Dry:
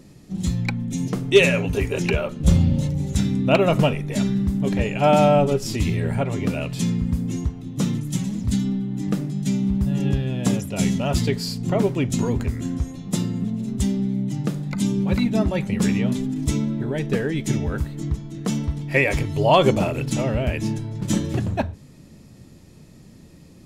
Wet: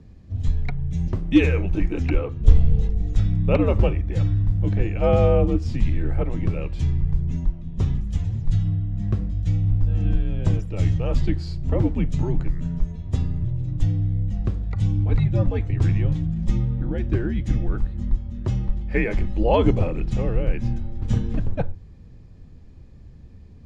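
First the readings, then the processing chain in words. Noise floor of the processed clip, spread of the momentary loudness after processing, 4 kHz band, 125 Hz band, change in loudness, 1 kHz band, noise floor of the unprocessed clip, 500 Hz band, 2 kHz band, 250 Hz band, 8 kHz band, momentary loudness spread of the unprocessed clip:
-44 dBFS, 8 LU, under -10 dB, +1.5 dB, -1.5 dB, -8.0 dB, -47 dBFS, -4.5 dB, -8.0 dB, -5.0 dB, under -15 dB, 9 LU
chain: tilt -2.5 dB/oct; frequency shift -95 Hz; air absorption 84 m; gain -4.5 dB

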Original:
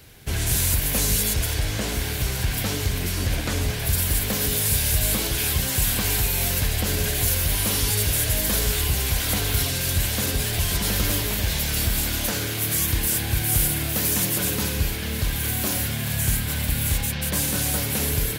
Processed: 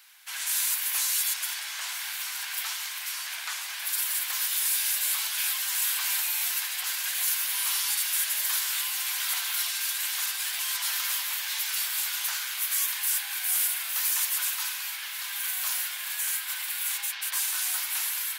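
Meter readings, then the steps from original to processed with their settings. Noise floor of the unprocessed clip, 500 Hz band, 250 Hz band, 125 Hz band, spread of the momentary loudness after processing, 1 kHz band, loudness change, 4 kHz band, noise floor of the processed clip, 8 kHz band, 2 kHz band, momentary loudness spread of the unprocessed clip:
-28 dBFS, under -25 dB, under -40 dB, under -40 dB, 7 LU, -6.0 dB, -4.5 dB, -3.0 dB, -36 dBFS, -3.0 dB, -3.0 dB, 5 LU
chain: steep high-pass 930 Hz 36 dB/oct; gain -3 dB

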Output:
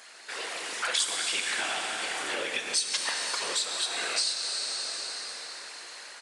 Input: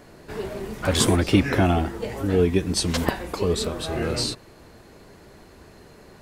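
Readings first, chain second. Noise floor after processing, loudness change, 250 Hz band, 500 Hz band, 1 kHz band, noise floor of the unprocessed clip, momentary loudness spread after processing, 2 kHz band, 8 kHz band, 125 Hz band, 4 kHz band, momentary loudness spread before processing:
-47 dBFS, -5.5 dB, -25.5 dB, -15.5 dB, -5.5 dB, -49 dBFS, 11 LU, +1.0 dB, +1.5 dB, under -35 dB, +2.0 dB, 13 LU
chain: whisperiser; AGC gain up to 4 dB; Bessel high-pass 2200 Hz, order 2; plate-style reverb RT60 4.4 s, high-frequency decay 0.75×, DRR 3 dB; downsampling 22050 Hz; compressor 3:1, threshold -39 dBFS, peak gain reduction 16.5 dB; gain +9 dB

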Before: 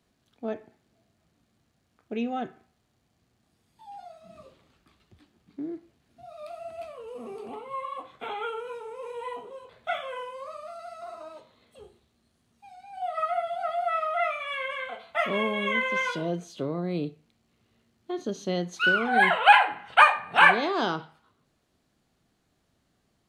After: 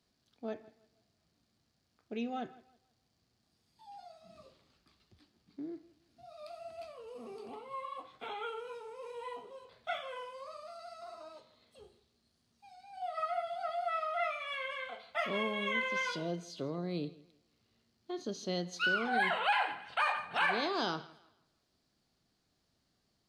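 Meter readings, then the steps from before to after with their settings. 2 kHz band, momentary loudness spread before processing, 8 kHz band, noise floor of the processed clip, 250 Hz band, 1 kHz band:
-10.5 dB, 22 LU, -4.5 dB, -78 dBFS, -7.5 dB, -11.0 dB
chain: bell 4800 Hz +10.5 dB 0.64 oct; thinning echo 0.163 s, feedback 31%, high-pass 160 Hz, level -20.5 dB; limiter -13.5 dBFS, peak gain reduction 9.5 dB; gain -7.5 dB

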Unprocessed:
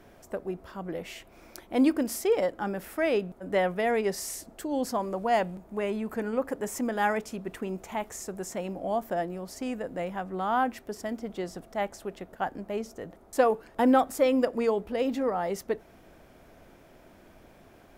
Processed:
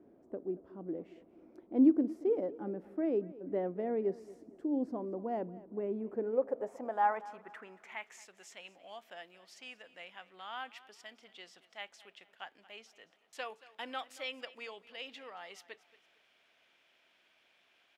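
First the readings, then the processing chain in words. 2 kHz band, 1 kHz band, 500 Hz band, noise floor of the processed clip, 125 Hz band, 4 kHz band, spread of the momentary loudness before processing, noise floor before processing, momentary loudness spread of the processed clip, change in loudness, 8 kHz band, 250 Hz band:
-10.5 dB, -10.0 dB, -9.5 dB, -71 dBFS, -11.5 dB, -5.5 dB, 12 LU, -55 dBFS, 20 LU, -6.5 dB, -20.0 dB, -5.5 dB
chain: band-pass sweep 310 Hz -> 3000 Hz, 5.94–8.32; feedback echo 0.228 s, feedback 34%, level -19 dB

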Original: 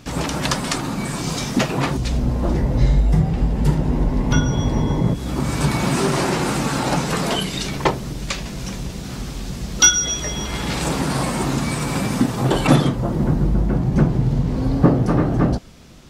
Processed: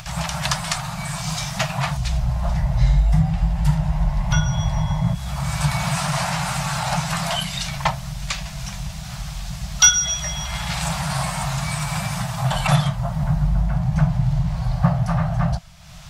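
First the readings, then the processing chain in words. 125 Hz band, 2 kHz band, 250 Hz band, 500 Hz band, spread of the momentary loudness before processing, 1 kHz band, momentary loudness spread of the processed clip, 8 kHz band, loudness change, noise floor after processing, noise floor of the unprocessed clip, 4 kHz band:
-0.5 dB, -0.5 dB, -7.0 dB, -9.0 dB, 10 LU, -0.5 dB, 9 LU, 0.0 dB, -2.0 dB, -32 dBFS, -30 dBFS, 0.0 dB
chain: elliptic band-stop 170–650 Hz, stop band 40 dB; upward compressor, threshold -31 dBFS

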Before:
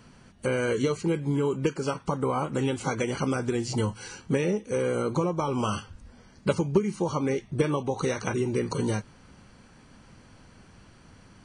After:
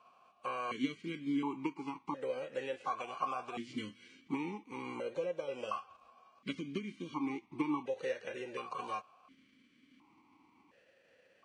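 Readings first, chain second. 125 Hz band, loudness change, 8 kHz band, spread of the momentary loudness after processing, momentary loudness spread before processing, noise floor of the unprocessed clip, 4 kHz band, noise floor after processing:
-23.0 dB, -11.5 dB, -21.5 dB, 7 LU, 4 LU, -54 dBFS, -9.5 dB, -69 dBFS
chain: spectral whitening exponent 0.6; bell 1100 Hz +14 dB 0.24 oct; vowel sequencer 1.4 Hz; gain -1.5 dB

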